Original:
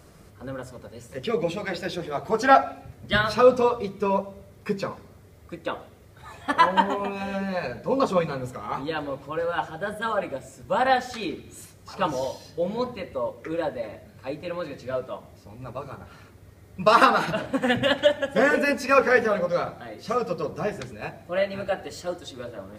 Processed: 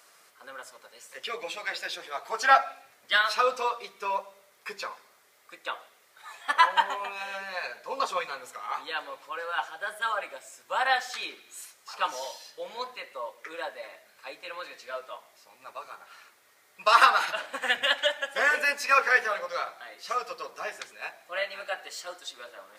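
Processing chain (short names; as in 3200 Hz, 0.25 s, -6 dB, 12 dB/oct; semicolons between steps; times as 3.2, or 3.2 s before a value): HPF 1100 Hz 12 dB/oct; gain +1.5 dB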